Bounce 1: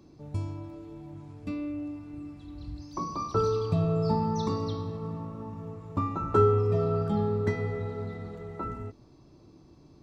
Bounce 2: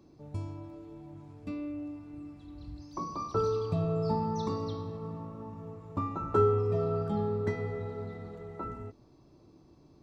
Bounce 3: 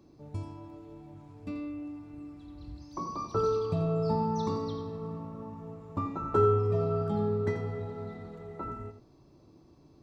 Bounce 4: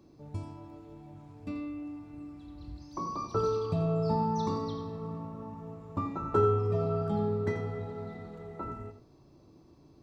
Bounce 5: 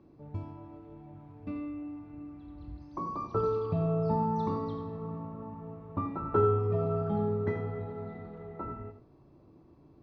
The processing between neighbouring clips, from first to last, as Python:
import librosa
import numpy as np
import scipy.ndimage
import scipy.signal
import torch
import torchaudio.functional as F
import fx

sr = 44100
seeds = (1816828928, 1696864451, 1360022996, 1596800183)

y1 = fx.peak_eq(x, sr, hz=610.0, db=3.0, octaves=2.2)
y1 = F.gain(torch.from_numpy(y1), -5.0).numpy()
y2 = y1 + 10.0 ** (-9.5 / 20.0) * np.pad(y1, (int(86 * sr / 1000.0), 0))[:len(y1)]
y3 = fx.doubler(y2, sr, ms=35.0, db=-13)
y4 = scipy.signal.sosfilt(scipy.signal.butter(2, 2300.0, 'lowpass', fs=sr, output='sos'), y3)